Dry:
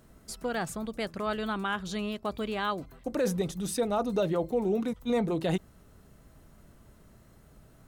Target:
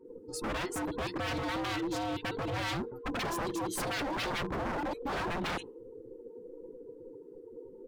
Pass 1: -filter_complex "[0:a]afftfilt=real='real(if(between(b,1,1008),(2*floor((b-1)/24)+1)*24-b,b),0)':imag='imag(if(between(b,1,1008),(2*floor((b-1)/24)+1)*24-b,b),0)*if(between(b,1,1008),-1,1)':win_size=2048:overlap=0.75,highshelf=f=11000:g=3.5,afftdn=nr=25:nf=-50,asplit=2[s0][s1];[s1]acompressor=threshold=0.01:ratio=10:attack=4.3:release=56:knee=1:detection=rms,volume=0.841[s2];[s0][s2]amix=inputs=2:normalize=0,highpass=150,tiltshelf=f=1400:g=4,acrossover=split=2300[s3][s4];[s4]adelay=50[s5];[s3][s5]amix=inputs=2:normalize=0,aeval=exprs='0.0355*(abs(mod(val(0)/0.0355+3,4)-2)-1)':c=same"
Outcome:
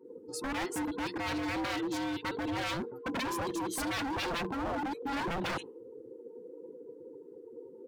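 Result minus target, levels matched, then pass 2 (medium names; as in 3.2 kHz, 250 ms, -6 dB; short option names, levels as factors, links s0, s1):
125 Hz band -3.5 dB
-filter_complex "[0:a]afftfilt=real='real(if(between(b,1,1008),(2*floor((b-1)/24)+1)*24-b,b),0)':imag='imag(if(between(b,1,1008),(2*floor((b-1)/24)+1)*24-b,b),0)*if(between(b,1,1008),-1,1)':win_size=2048:overlap=0.75,highshelf=f=11000:g=3.5,afftdn=nr=25:nf=-50,asplit=2[s0][s1];[s1]acompressor=threshold=0.01:ratio=10:attack=4.3:release=56:knee=1:detection=rms,volume=0.841[s2];[s0][s2]amix=inputs=2:normalize=0,tiltshelf=f=1400:g=4,acrossover=split=2300[s3][s4];[s4]adelay=50[s5];[s3][s5]amix=inputs=2:normalize=0,aeval=exprs='0.0355*(abs(mod(val(0)/0.0355+3,4)-2)-1)':c=same"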